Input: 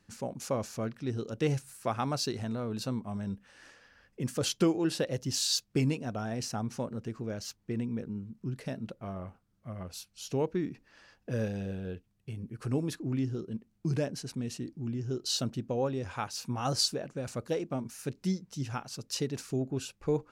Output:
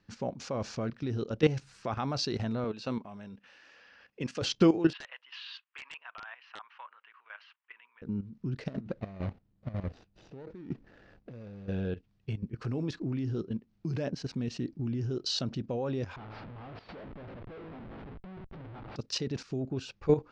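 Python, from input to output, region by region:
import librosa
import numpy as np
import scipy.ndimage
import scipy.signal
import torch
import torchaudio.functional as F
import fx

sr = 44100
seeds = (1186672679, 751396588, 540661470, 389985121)

y = fx.chain(x, sr, fx.highpass(hz=360.0, slope=6),
    fx.peak_eq(hz=2600.0, db=5.5, octaves=0.31), at=(2.64, 4.42))
y = fx.chain(y, sr, fx.ellip_bandpass(low_hz=1000.0, high_hz=3000.0, order=3, stop_db=80),
    fx.overflow_wrap(gain_db=34.0), at=(4.93, 8.02))
y = fx.chain(y, sr, fx.median_filter(points=41),
    fx.over_compress(threshold_db=-43.0, ratio=-1.0), at=(8.68, 11.69))
y = fx.chain(y, sr, fx.comb_fb(f0_hz=54.0, decay_s=0.78, harmonics='all', damping=0.0, mix_pct=70),
    fx.schmitt(flips_db=-49.0),
    fx.air_absorb(metres=460.0), at=(16.16, 18.96))
y = scipy.signal.sosfilt(scipy.signal.butter(4, 5300.0, 'lowpass', fs=sr, output='sos'), y)
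y = fx.level_steps(y, sr, step_db=13)
y = y * librosa.db_to_amplitude(7.0)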